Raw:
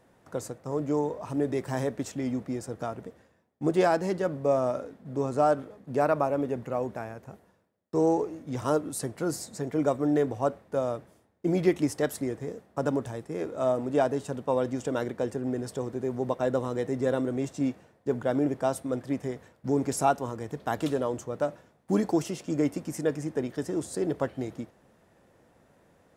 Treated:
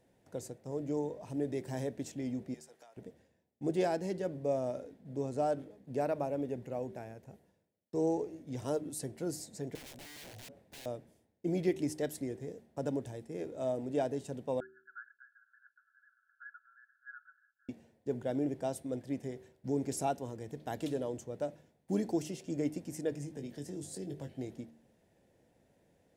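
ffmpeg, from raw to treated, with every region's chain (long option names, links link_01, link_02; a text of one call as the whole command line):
ffmpeg -i in.wav -filter_complex "[0:a]asettb=1/sr,asplit=3[link_01][link_02][link_03];[link_01]atrim=end=2.544[link_04];[link_02]atrim=start=2.54:end=2.97,asetpts=PTS-STARTPTS,afade=type=in:duration=0.004:curve=qsin,afade=type=out:start_time=0.426:duration=0.004:curve=qsin,highpass=910,acompressor=threshold=-44dB:ratio=5:attack=3.2:release=140:knee=1:detection=peak[link_05];[link_03]atrim=start=2.966[link_06];[link_04][link_05]acrossfade=duration=0.004:curve1=hsin:curve2=qsin[link_07];[link_07][link_06]acrossfade=duration=0.004:curve1=qsin:curve2=hsin,asettb=1/sr,asplit=3[link_08][link_09][link_10];[link_08]atrim=end=9.754[link_11];[link_09]atrim=start=9.75:end=10.86,asetpts=PTS-STARTPTS,afade=type=in:duration=0.004:curve=qsin,afade=type=out:start_time=1.106:duration=0.004:curve=qsin,acompressor=threshold=-38dB:ratio=2:attack=3.2:release=140:knee=1:detection=peak,aeval=exprs='(mod(70.8*val(0)+1,2)-1)/70.8':channel_layout=same[link_12];[link_10]atrim=start=10.856[link_13];[link_11][link_12]acrossfade=duration=0.004:curve1=hsin:curve2=qsin[link_14];[link_14][link_13]acrossfade=duration=0.004:curve1=qsin:curve2=hsin,asettb=1/sr,asplit=3[link_15][link_16][link_17];[link_15]atrim=end=14.604[link_18];[link_16]atrim=start=14.6:end=17.69,asetpts=PTS-STARTPTS,afade=type=in:duration=0.004:curve=qsin,afade=type=out:start_time=3.086:duration=0.004:curve=qsin,agate=range=-33dB:threshold=-38dB:ratio=3:release=100:detection=peak,asuperpass=centerf=1500:order=20:qfactor=3.7,acontrast=83[link_19];[link_17]atrim=start=17.686[link_20];[link_18][link_19]acrossfade=duration=0.004:curve1=hsin:curve2=qsin[link_21];[link_21][link_20]acrossfade=duration=0.004:curve1=qsin:curve2=hsin,asettb=1/sr,asplit=3[link_22][link_23][link_24];[link_22]atrim=end=23.124[link_25];[link_23]atrim=start=23.12:end=24.34,asetpts=PTS-STARTPTS,afade=type=in:duration=0.004:curve=qsin,afade=type=out:start_time=1.216:duration=0.004:curve=qsin,acrossover=split=210|3000[link_26][link_27][link_28];[link_27]acompressor=threshold=-36dB:ratio=6:attack=3.2:release=140:knee=2.83:detection=peak[link_29];[link_26][link_29][link_28]amix=inputs=3:normalize=0,asplit=2[link_30][link_31];[link_31]adelay=21,volume=-7dB[link_32];[link_30][link_32]amix=inputs=2:normalize=0,atrim=end_sample=53802[link_33];[link_24]atrim=start=24.336[link_34];[link_25][link_33]acrossfade=duration=0.004:curve1=hsin:curve2=qsin[link_35];[link_35][link_34]acrossfade=duration=0.004:curve1=qsin:curve2=hsin,equalizer=frequency=1200:width_type=o:width=0.67:gain=-14,bandreject=frequency=76.59:width_type=h:width=4,bandreject=frequency=153.18:width_type=h:width=4,bandreject=frequency=229.77:width_type=h:width=4,bandreject=frequency=306.36:width_type=h:width=4,bandreject=frequency=382.95:width_type=h:width=4,volume=-6.5dB" out.wav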